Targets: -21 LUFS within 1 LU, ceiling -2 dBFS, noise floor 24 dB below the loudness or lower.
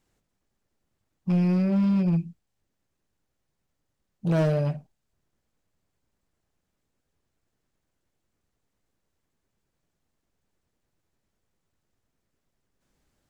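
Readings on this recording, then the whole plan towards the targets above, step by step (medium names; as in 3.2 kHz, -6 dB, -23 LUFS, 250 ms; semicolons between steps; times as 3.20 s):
clipped samples 0.9%; clipping level -18.5 dBFS; loudness -24.5 LUFS; peak level -18.5 dBFS; loudness target -21.0 LUFS
-> clip repair -18.5 dBFS; trim +3.5 dB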